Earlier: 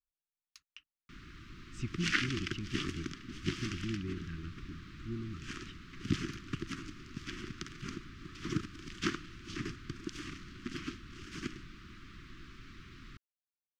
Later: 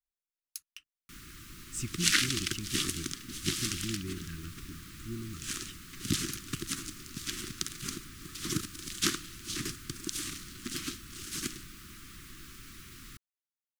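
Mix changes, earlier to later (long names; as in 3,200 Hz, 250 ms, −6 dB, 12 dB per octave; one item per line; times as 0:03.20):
second sound: add parametric band 3,900 Hz +7.5 dB 0.39 octaves
master: remove high-frequency loss of the air 210 metres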